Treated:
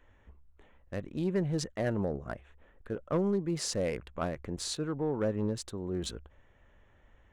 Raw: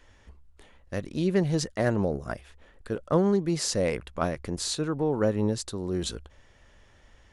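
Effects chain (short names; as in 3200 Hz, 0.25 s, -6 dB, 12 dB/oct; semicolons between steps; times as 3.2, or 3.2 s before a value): Wiener smoothing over 9 samples; soft clip -15.5 dBFS, distortion -19 dB; gain -4.5 dB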